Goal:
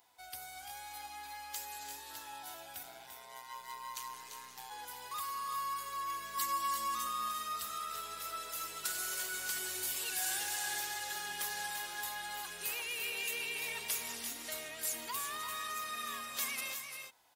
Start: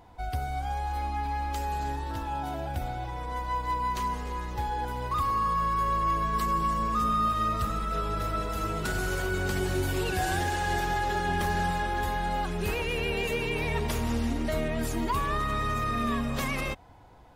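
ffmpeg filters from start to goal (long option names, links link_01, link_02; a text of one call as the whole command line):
ffmpeg -i in.wav -filter_complex "[0:a]aderivative,asplit=3[link_01][link_02][link_03];[link_01]afade=type=out:start_time=2.82:duration=0.02[link_04];[link_02]aeval=exprs='val(0)*sin(2*PI*62*n/s)':channel_layout=same,afade=type=in:start_time=2.82:duration=0.02,afade=type=out:start_time=4.69:duration=0.02[link_05];[link_03]afade=type=in:start_time=4.69:duration=0.02[link_06];[link_04][link_05][link_06]amix=inputs=3:normalize=0,asettb=1/sr,asplit=3[link_07][link_08][link_09];[link_07]atrim=end=6.374[link_10];[link_08]atrim=start=6.37:end=7.07,asetpts=PTS-STARTPTS,afade=type=in:duration=0.004:curve=qsin,afade=type=out:start_time=0.696:duration=0.004:curve=qsin,aecho=1:1:3.6:0.79,atrim=end_sample=30870[link_11];[link_09]atrim=start=7.066[link_12];[link_10][link_11]acrossfade=duration=0.004:curve1=hsin:curve2=qsin[link_13];[link_13][link_12]acrossfade=duration=0.004:curve1=qsin:curve2=hsin,aecho=1:1:342|363:0.376|0.299,volume=3dB" out.wav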